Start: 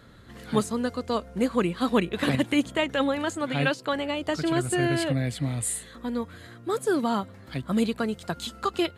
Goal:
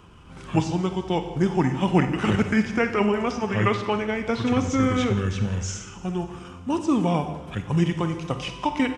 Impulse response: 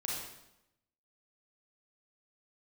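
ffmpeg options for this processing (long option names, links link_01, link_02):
-filter_complex "[0:a]asetrate=33038,aresample=44100,atempo=1.33484,acrossover=split=5400[link_01][link_02];[link_02]acompressor=threshold=-51dB:ratio=4:attack=1:release=60[link_03];[link_01][link_03]amix=inputs=2:normalize=0,aecho=1:1:175|350|525|700|875:0.112|0.0651|0.0377|0.0219|0.0127,asplit=2[link_04][link_05];[1:a]atrim=start_sample=2205[link_06];[link_05][link_06]afir=irnorm=-1:irlink=0,volume=-6dB[link_07];[link_04][link_07]amix=inputs=2:normalize=0"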